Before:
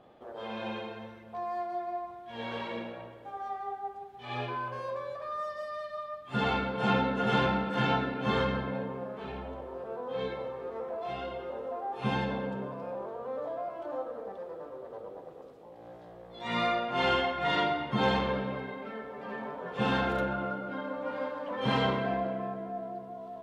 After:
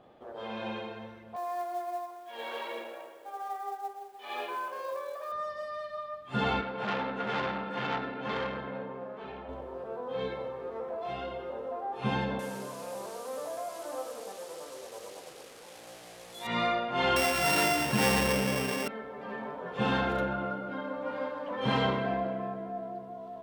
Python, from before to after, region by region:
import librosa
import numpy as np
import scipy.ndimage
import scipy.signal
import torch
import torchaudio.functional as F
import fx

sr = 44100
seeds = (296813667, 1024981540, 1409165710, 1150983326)

y = fx.chain(x, sr, fx.highpass(hz=360.0, slope=24),
    fx.quant_companded(bits=6), at=(1.36, 5.32))
y = fx.chain(y, sr, fx.lowpass(hz=3400.0, slope=6),
    fx.low_shelf(hz=190.0, db=-11.0),
    fx.transformer_sat(knee_hz=1600.0), at=(6.61, 9.49))
y = fx.chain(y, sr, fx.delta_mod(bps=64000, step_db=-45.0),
    fx.tilt_eq(slope=2.0),
    fx.echo_single(ms=566, db=-16.5), at=(12.39, 16.47))
y = fx.chain(y, sr, fx.sample_sort(block=16),
    fx.env_flatten(amount_pct=50), at=(17.16, 18.88))